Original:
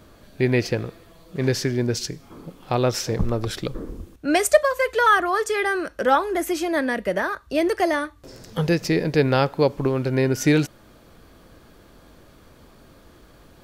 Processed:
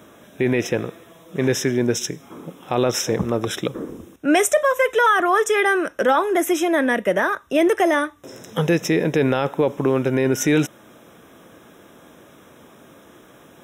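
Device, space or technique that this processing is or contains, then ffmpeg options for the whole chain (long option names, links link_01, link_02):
PA system with an anti-feedback notch: -af "highpass=170,asuperstop=centerf=4500:order=12:qfactor=3.6,alimiter=limit=-13.5dB:level=0:latency=1:release=15,volume=5dB"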